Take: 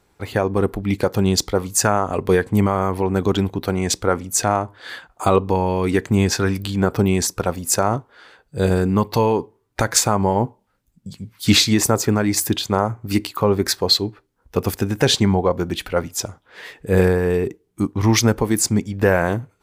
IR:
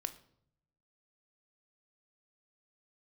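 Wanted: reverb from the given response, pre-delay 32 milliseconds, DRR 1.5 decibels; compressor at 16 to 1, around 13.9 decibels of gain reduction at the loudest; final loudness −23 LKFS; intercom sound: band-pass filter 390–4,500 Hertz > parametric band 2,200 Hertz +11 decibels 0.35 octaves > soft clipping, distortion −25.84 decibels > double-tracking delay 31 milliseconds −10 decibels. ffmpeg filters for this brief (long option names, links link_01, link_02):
-filter_complex "[0:a]acompressor=threshold=-25dB:ratio=16,asplit=2[link_01][link_02];[1:a]atrim=start_sample=2205,adelay=32[link_03];[link_02][link_03]afir=irnorm=-1:irlink=0,volume=-0.5dB[link_04];[link_01][link_04]amix=inputs=2:normalize=0,highpass=390,lowpass=4500,equalizer=frequency=2200:width_type=o:width=0.35:gain=11,asoftclip=threshold=-14.5dB,asplit=2[link_05][link_06];[link_06]adelay=31,volume=-10dB[link_07];[link_05][link_07]amix=inputs=2:normalize=0,volume=9dB"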